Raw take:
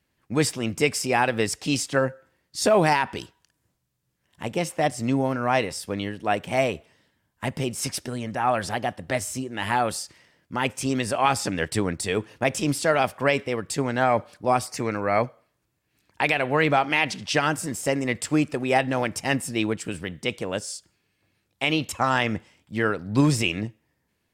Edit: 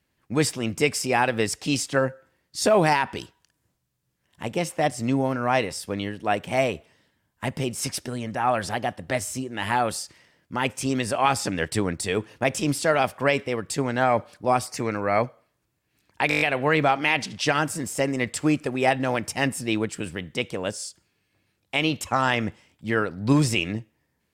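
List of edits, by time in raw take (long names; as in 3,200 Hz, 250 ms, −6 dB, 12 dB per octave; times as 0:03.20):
0:16.29: stutter 0.02 s, 7 plays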